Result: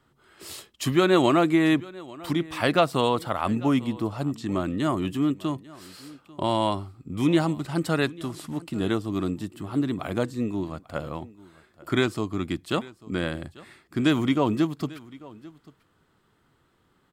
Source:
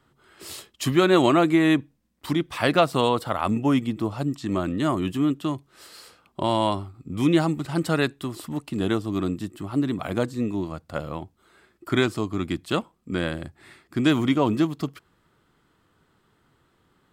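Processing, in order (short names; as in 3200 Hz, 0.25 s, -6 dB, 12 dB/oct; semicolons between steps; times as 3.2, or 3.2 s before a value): 8.16–8.56 CVSD 64 kbps; echo 0.843 s -21 dB; gain -1.5 dB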